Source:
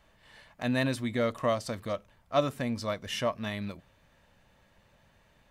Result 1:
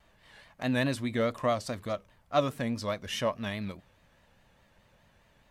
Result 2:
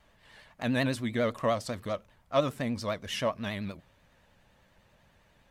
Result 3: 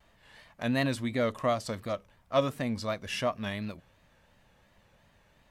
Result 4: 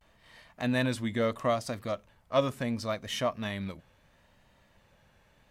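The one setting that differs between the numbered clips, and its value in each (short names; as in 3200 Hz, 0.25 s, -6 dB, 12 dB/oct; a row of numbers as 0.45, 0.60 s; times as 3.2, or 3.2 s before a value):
vibrato, rate: 4.8, 10, 2.8, 0.73 Hz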